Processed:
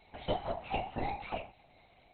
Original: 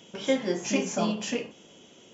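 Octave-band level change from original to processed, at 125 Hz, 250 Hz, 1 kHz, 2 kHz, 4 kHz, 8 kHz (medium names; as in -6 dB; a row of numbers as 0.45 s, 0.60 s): -5.5 dB, -16.5 dB, +1.5 dB, -9.5 dB, -11.0 dB, no reading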